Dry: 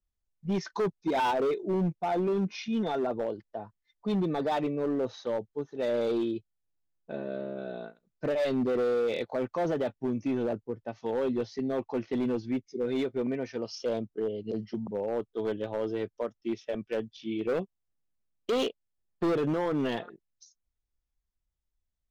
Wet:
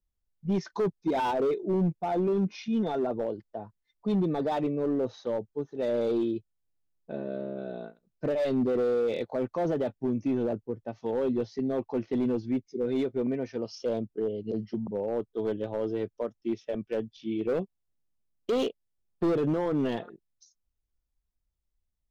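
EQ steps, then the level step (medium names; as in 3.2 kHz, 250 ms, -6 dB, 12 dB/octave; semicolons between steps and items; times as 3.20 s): peaking EQ 1.8 kHz -5.5 dB 2.7 oct; treble shelf 4.5 kHz -6 dB; +2.5 dB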